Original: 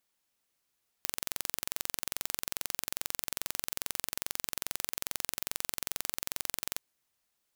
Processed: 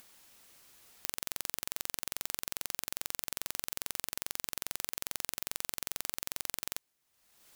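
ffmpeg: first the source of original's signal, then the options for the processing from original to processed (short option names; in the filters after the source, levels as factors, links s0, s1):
-f lavfi -i "aevalsrc='0.562*eq(mod(n,1969),0)':d=5.73:s=44100"
-af "acompressor=mode=upward:threshold=0.00708:ratio=2.5,acrusher=bits=3:mode=log:mix=0:aa=0.000001"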